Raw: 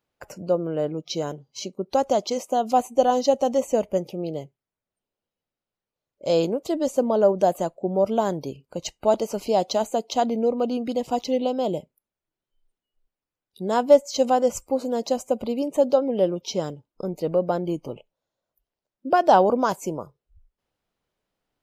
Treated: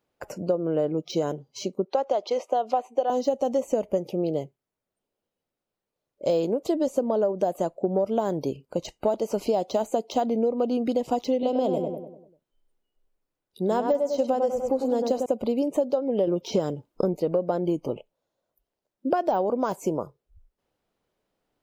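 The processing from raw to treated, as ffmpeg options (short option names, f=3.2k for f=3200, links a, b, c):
-filter_complex "[0:a]asettb=1/sr,asplit=3[a][b][c];[a]atrim=end=1.854[d];[b]atrim=start=1.85:end=3.1,asetpts=PTS-STARTPTS,afade=t=in:d=0.004:c=qsin,afade=t=out:st=1.246:d=0.004:c=qsin,acrossover=split=370 4700:gain=0.112 1 0.1[e][f][g];[e][f][g]amix=inputs=3:normalize=0[h];[c]atrim=start=3.096[i];[d][h]acrossfade=d=0.004:c1=hsin:c2=qsin[j];[j][i]acrossfade=d=0.004:c1=qsin:c2=hsin,asettb=1/sr,asplit=3[k][l][m];[k]atrim=end=11.334[n];[l]atrim=start=11.33:end=15.26,asetpts=PTS-STARTPTS,afade=t=in:d=0.004:c=qsin,afade=t=out:st=3.926:d=0.004:c=qsin,asplit=2[o][p];[p]adelay=98,lowpass=f=1.8k:p=1,volume=-5.5dB,asplit=2[q][r];[r]adelay=98,lowpass=f=1.8k:p=1,volume=0.48,asplit=2[s][t];[t]adelay=98,lowpass=f=1.8k:p=1,volume=0.48,asplit=2[u][v];[v]adelay=98,lowpass=f=1.8k:p=1,volume=0.48,asplit=2[w][x];[x]adelay=98,lowpass=f=1.8k:p=1,volume=0.48,asplit=2[y][z];[z]adelay=98,lowpass=f=1.8k:p=1,volume=0.48[aa];[o][q][s][u][w][y][aa]amix=inputs=7:normalize=0,atrim=end_sample=173313[ab];[m]atrim=start=15.256[ac];[n][ab]acrossfade=d=0.004:c1=hsin:c2=qsin[ad];[ad][ac]acrossfade=d=0.004:c1=qsin:c2=hsin,asettb=1/sr,asplit=3[ae][af][ag];[ae]atrim=end=16.274[ah];[af]atrim=start=16.27:end=17.17,asetpts=PTS-STARTPTS,afade=t=in:d=0.004:c=qsin,afade=t=out:st=0.896:d=0.004:c=qsin,acontrast=74[ai];[ag]atrim=start=17.166[aj];[ah][ai]acrossfade=d=0.004:c1=hsin:c2=qsin[ak];[ak][aj]acrossfade=d=0.004:c1=qsin:c2=hsin,deesser=0.8,equalizer=f=410:t=o:w=2.4:g=5.5,acompressor=threshold=-20dB:ratio=12"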